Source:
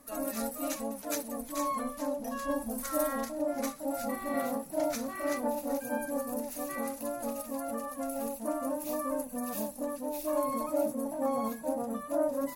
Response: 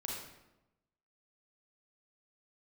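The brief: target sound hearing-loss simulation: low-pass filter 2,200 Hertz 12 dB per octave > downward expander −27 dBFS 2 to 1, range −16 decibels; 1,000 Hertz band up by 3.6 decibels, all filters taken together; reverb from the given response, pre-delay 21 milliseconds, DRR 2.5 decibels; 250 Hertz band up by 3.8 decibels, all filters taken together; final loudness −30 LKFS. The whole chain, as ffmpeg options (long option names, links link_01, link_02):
-filter_complex "[0:a]equalizer=frequency=250:width_type=o:gain=4,equalizer=frequency=1000:width_type=o:gain=4.5,asplit=2[link_01][link_02];[1:a]atrim=start_sample=2205,adelay=21[link_03];[link_02][link_03]afir=irnorm=-1:irlink=0,volume=-3dB[link_04];[link_01][link_04]amix=inputs=2:normalize=0,lowpass=2200,agate=range=-16dB:threshold=-27dB:ratio=2"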